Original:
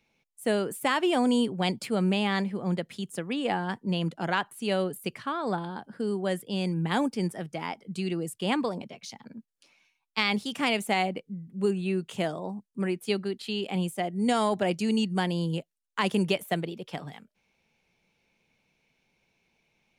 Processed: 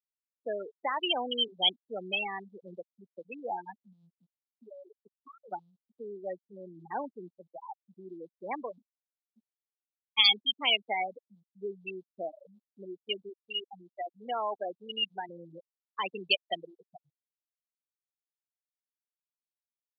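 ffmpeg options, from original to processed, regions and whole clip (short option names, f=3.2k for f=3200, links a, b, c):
-filter_complex "[0:a]asettb=1/sr,asplit=3[a][b][c];[a]atrim=end=3.764[d];[b]atrim=start=3.76:end=5.52,asetpts=PTS-STARTPTS,afade=t=in:d=0.004:c=qsin,afade=t=out:st=1.756:d=0.004:c=qsin,aeval=exprs='if(lt(val(0),0),0.708*val(0),val(0))':c=same,acompressor=threshold=-31dB:ratio=8:attack=3.2:release=140:knee=1:detection=peak[e];[c]atrim=start=5.516[f];[d][e]acrossfade=d=0.004:c1=hsin:c2=qsin[g];[g][f]acrossfade=d=0.004:c1=qsin:c2=hsin,asettb=1/sr,asplit=3[h][i][j];[h]atrim=end=13.294[k];[i]atrim=start=13.29:end=15.29,asetpts=PTS-STARTPTS,afade=t=in:d=0.004:c=qsin,afade=t=out:st=1.996:d=0.004:c=qsin,highpass=140,lowshelf=f=300:g=-6[l];[j]atrim=start=15.286[m];[k][l]acrossfade=d=0.004:c1=hsin:c2=qsin[n];[n][m]acrossfade=d=0.004:c1=qsin:c2=hsin,afftfilt=real='re*gte(hypot(re,im),0.126)':imag='im*gte(hypot(re,im),0.126)':win_size=1024:overlap=0.75,highpass=690,highshelf=f=2.6k:t=q:w=3:g=13"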